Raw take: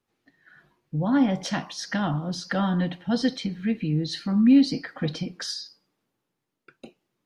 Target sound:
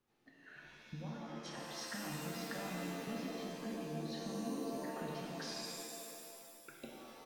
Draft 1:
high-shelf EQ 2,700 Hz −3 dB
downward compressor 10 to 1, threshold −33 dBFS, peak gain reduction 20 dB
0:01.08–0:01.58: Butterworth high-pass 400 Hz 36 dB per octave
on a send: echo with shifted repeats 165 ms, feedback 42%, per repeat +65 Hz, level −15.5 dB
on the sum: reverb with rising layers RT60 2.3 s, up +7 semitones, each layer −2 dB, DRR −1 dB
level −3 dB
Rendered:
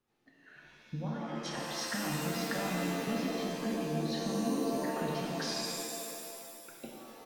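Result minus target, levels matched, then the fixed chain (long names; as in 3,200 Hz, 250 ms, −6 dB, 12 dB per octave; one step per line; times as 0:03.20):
downward compressor: peak gain reduction −8.5 dB
high-shelf EQ 2,700 Hz −3 dB
downward compressor 10 to 1, threshold −42.5 dBFS, peak gain reduction 28.5 dB
0:01.08–0:01.58: Butterworth high-pass 400 Hz 36 dB per octave
on a send: echo with shifted repeats 165 ms, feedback 42%, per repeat +65 Hz, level −15.5 dB
on the sum: reverb with rising layers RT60 2.3 s, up +7 semitones, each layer −2 dB, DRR −1 dB
level −3 dB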